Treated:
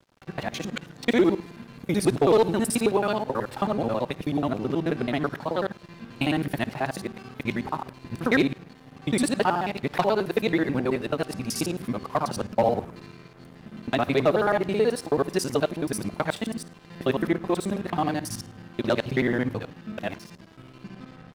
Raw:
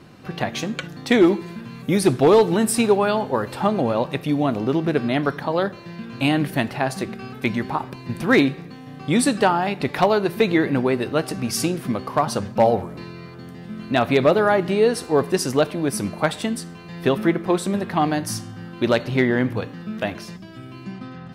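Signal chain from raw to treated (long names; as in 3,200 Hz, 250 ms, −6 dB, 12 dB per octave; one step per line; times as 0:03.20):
reversed piece by piece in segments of 54 ms
dead-zone distortion −42.5 dBFS
level −4.5 dB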